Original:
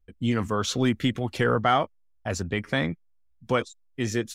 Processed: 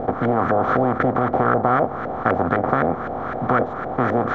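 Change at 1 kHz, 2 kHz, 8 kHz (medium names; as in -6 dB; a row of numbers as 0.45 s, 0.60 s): +10.0 dB, +4.5 dB, under -20 dB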